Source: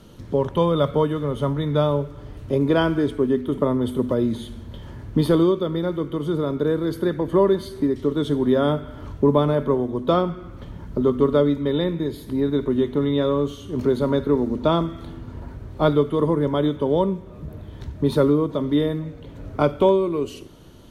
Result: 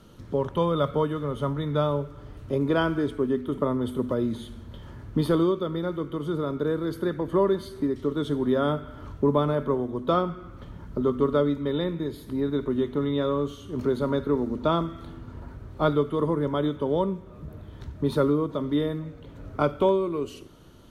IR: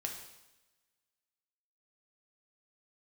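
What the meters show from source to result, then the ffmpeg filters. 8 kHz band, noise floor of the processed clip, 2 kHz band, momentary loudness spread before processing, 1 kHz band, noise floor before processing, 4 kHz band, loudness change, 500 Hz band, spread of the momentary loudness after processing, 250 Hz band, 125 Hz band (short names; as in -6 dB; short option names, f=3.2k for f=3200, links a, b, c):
n/a, -45 dBFS, -2.5 dB, 18 LU, -3.0 dB, -40 dBFS, -5.0 dB, -5.0 dB, -5.0 dB, 18 LU, -5.0 dB, -5.0 dB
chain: -af "equalizer=f=1.3k:w=3.3:g=5,volume=-5dB"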